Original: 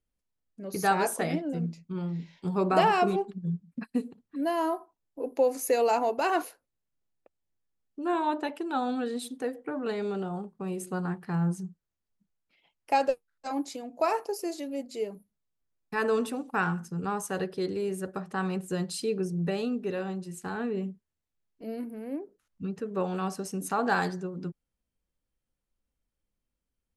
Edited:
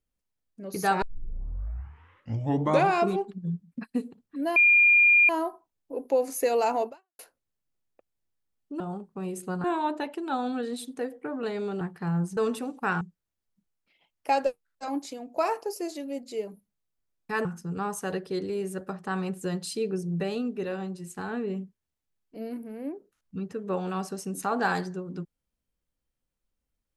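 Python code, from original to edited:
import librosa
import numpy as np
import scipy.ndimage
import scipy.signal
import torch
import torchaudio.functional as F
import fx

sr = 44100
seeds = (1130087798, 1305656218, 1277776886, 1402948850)

y = fx.edit(x, sr, fx.tape_start(start_s=1.02, length_s=2.07),
    fx.insert_tone(at_s=4.56, length_s=0.73, hz=2410.0, db=-15.0),
    fx.fade_out_span(start_s=6.15, length_s=0.31, curve='exp'),
    fx.move(start_s=10.24, length_s=0.84, to_s=8.07),
    fx.move(start_s=16.08, length_s=0.64, to_s=11.64), tone=tone)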